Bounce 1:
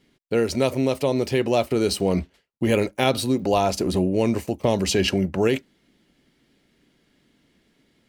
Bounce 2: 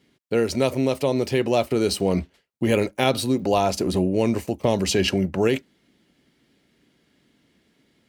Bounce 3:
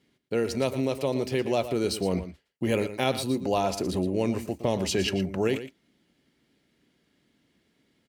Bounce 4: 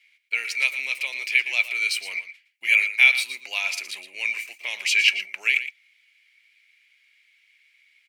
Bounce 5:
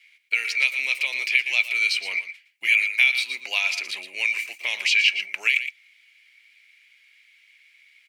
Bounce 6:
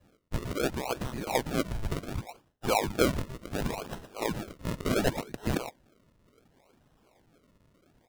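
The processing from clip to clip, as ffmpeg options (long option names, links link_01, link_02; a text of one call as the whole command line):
ffmpeg -i in.wav -af "highpass=55" out.wav
ffmpeg -i in.wav -af "aecho=1:1:116:0.251,volume=-5.5dB" out.wav
ffmpeg -i in.wav -af "highpass=frequency=2300:width_type=q:width=11,volume=3dB" out.wav
ffmpeg -i in.wav -filter_complex "[0:a]acrossover=split=2200|5400[link_01][link_02][link_03];[link_01]acompressor=threshold=-34dB:ratio=4[link_04];[link_02]acompressor=threshold=-22dB:ratio=4[link_05];[link_03]acompressor=threshold=-49dB:ratio=4[link_06];[link_04][link_05][link_06]amix=inputs=3:normalize=0,volume=4.5dB" out.wav
ffmpeg -i in.wav -af "acrusher=samples=38:mix=1:aa=0.000001:lfo=1:lforange=38:lforate=0.69,volume=-7.5dB" out.wav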